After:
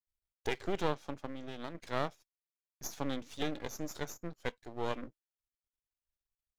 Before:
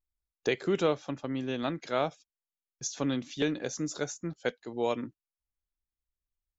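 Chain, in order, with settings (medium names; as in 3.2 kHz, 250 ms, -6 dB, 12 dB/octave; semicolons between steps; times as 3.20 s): 1.27–1.75 s: compression 10:1, threshold -33 dBFS, peak gain reduction 8 dB; half-wave rectifier; trim -2.5 dB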